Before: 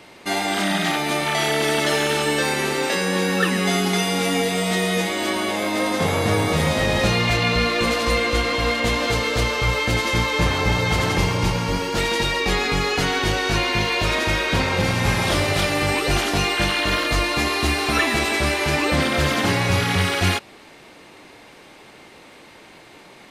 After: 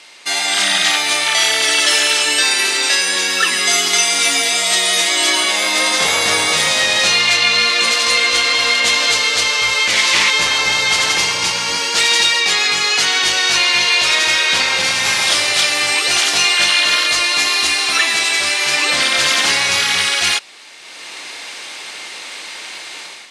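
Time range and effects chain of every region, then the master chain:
1.67–5.43 s: comb 3 ms, depth 51% + de-hum 164.8 Hz, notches 31
9.86–10.30 s: flutter echo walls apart 9.7 m, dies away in 0.67 s + loudspeaker Doppler distortion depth 0.32 ms
whole clip: frequency weighting ITU-R 468; level rider; trim -1 dB

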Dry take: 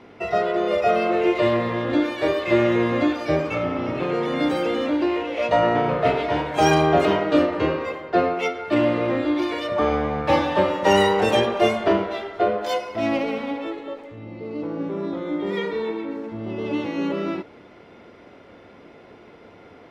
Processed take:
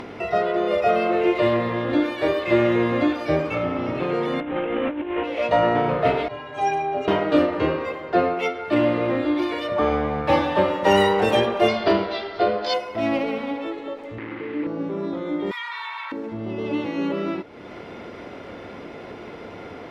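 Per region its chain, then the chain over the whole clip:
4.40–5.24 s: CVSD coder 16 kbps + compressor with a negative ratio -25 dBFS, ratio -0.5
6.28–7.08 s: distance through air 61 m + inharmonic resonator 120 Hz, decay 0.31 s, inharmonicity 0.03
11.68–12.74 s: resonant low-pass 4.7 kHz, resonance Q 5 + hard clipper -8.5 dBFS
14.18–14.67 s: word length cut 6-bit, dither none + cabinet simulation 150–2500 Hz, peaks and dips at 200 Hz -10 dB, 300 Hz +6 dB, 660 Hz -9 dB, 2 kHz +6 dB
15.51–16.12 s: elliptic high-pass 960 Hz, stop band 60 dB + level flattener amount 70%
whole clip: upward compressor, threshold -27 dBFS; dynamic bell 6.6 kHz, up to -5 dB, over -49 dBFS, Q 1.4

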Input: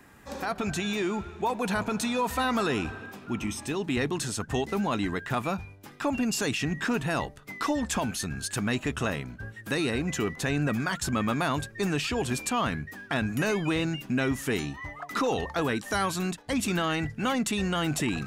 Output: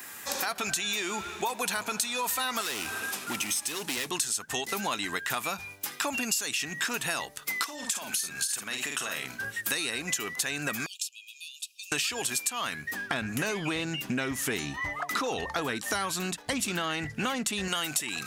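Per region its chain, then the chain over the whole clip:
2.61–4.10 s: CVSD coder 64 kbps + high-pass 42 Hz + overload inside the chain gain 29.5 dB
7.64–9.45 s: high-pass 180 Hz 6 dB/octave + doubling 47 ms -6 dB + compression 8:1, threshold -35 dBFS
10.86–11.92 s: compression 12:1, threshold -35 dBFS + brick-wall FIR high-pass 2.4 kHz + tilt EQ -3.5 dB/octave
12.91–17.68 s: tilt EQ -2.5 dB/octave + loudspeaker Doppler distortion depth 0.11 ms
whole clip: tilt EQ +4.5 dB/octave; compression 6:1, threshold -35 dBFS; trim +7 dB

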